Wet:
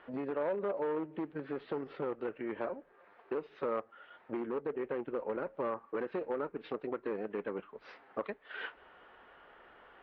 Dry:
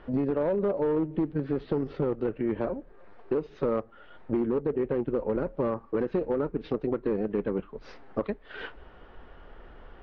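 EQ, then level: band-pass 3000 Hz, Q 0.75; air absorption 110 m; high shelf 2200 Hz -11.5 dB; +7.0 dB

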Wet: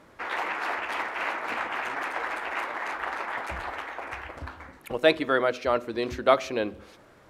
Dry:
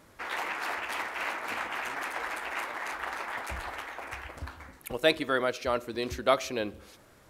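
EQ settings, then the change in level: LPF 2400 Hz 6 dB/oct; low shelf 110 Hz -6.5 dB; notches 50/100/150/200/250 Hz; +5.0 dB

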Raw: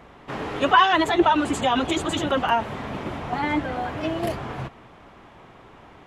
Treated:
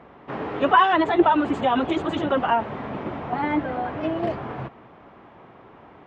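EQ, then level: HPF 180 Hz 6 dB/oct; tape spacing loss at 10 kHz 32 dB; +3.5 dB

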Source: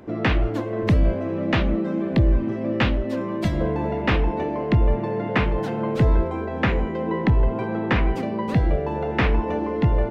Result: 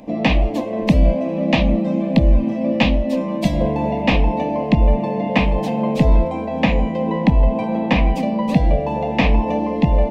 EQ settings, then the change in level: bell 2500 Hz +5 dB 0.21 oct; fixed phaser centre 380 Hz, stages 6; +8.0 dB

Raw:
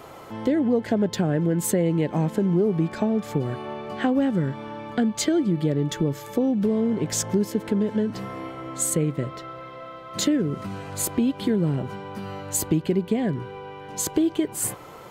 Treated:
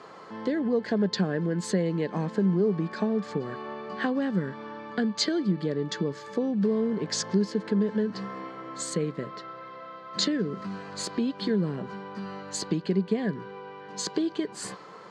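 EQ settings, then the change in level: dynamic EQ 4400 Hz, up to +6 dB, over -45 dBFS, Q 1.4; speaker cabinet 170–7300 Hz, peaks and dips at 190 Hz +10 dB, 440 Hz +6 dB, 1100 Hz +8 dB, 1700 Hz +9 dB, 4500 Hz +9 dB; -7.5 dB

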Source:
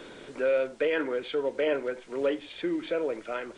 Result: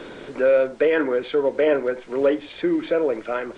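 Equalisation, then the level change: high shelf 4400 Hz -11 dB; dynamic EQ 2800 Hz, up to -4 dB, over -50 dBFS, Q 2.4; +8.5 dB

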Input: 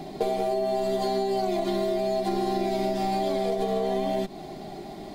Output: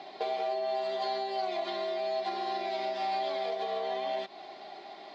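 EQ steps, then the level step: HPF 790 Hz 12 dB/oct; LPF 4600 Hz 24 dB/oct; 0.0 dB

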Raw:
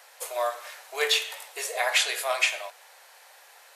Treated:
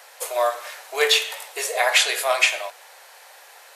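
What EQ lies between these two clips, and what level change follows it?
low shelf 340 Hz +5.5 dB; +5.5 dB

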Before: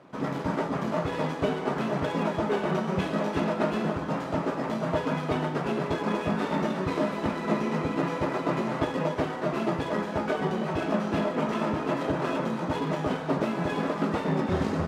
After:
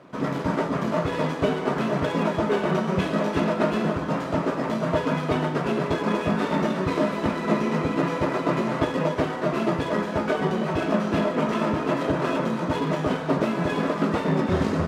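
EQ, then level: notch 810 Hz, Q 12; +4.0 dB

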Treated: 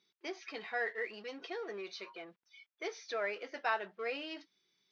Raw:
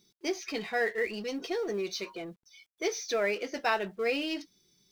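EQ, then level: dynamic EQ 2400 Hz, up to -7 dB, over -46 dBFS, Q 1.3; band-pass 2000 Hz, Q 0.72; air absorption 150 m; +1.0 dB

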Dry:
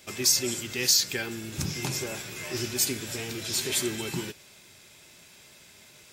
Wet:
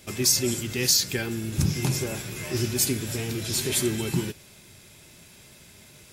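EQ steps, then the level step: low shelf 160 Hz +3 dB; low shelf 340 Hz +8.5 dB; bell 11000 Hz +7.5 dB 0.4 oct; 0.0 dB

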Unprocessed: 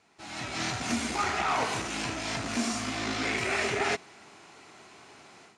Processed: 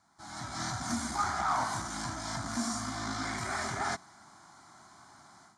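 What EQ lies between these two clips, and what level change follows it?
fixed phaser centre 1100 Hz, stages 4; notch 1900 Hz, Q 19; 0.0 dB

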